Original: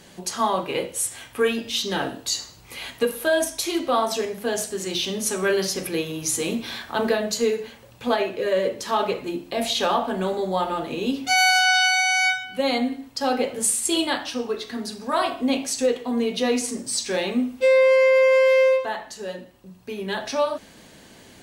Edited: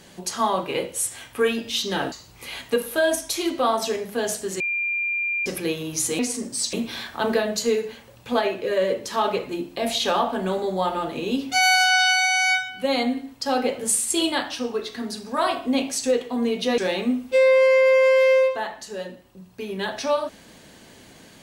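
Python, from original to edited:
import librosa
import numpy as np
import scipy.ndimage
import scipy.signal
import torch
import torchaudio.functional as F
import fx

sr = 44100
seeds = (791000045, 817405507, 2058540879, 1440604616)

y = fx.edit(x, sr, fx.cut(start_s=2.12, length_s=0.29),
    fx.bleep(start_s=4.89, length_s=0.86, hz=2390.0, db=-22.0),
    fx.move(start_s=16.53, length_s=0.54, to_s=6.48), tone=tone)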